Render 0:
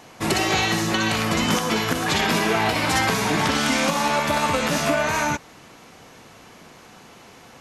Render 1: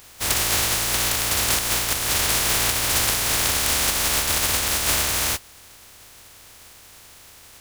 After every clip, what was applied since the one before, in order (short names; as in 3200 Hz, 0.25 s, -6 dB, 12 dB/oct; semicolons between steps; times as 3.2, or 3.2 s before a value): spectral contrast lowered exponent 0.1; resonant low shelf 120 Hz +7.5 dB, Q 1.5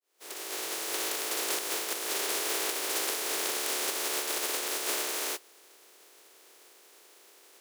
opening faded in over 0.98 s; ladder high-pass 340 Hz, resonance 60%